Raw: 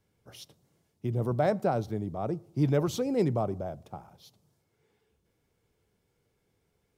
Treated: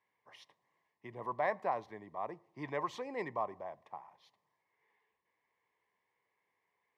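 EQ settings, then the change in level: two resonant band-passes 1.4 kHz, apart 0.84 oct; +8.0 dB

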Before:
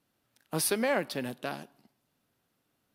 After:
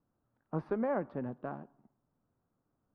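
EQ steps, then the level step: resonant low-pass 1.2 kHz, resonance Q 1.8; tilt EQ -4 dB/octave; bass shelf 220 Hz -4.5 dB; -8.5 dB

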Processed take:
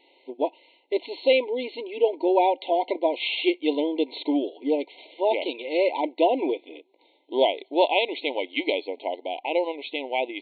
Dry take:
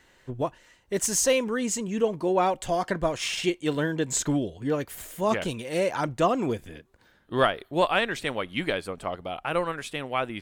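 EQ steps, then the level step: brick-wall FIR band-pass 260–4400 Hz; brick-wall FIR band-stop 1–2 kHz; +3.5 dB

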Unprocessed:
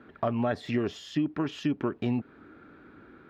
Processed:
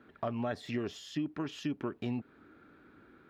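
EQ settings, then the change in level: treble shelf 4.5 kHz +8.5 dB; -7.0 dB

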